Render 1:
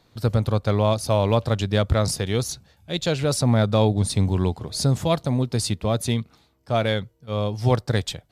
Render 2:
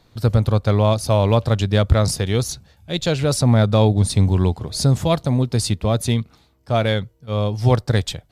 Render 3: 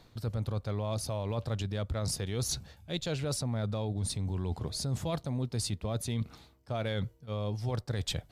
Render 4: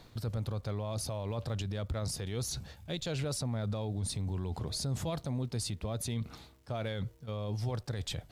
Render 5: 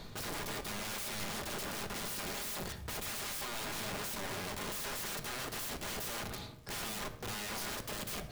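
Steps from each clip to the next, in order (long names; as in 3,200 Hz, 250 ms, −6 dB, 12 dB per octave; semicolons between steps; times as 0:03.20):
low-shelf EQ 76 Hz +8 dB; level +2.5 dB
brickwall limiter −12.5 dBFS, peak gain reduction 11 dB; reversed playback; downward compressor 6 to 1, threshold −31 dBFS, peak gain reduction 14 dB; reversed playback
brickwall limiter −30.5 dBFS, peak gain reduction 9.5 dB; surface crackle 430 per second −63 dBFS; level +3 dB
wrap-around overflow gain 42.5 dB; rectangular room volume 2,000 cubic metres, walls furnished, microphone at 1.3 metres; level +6.5 dB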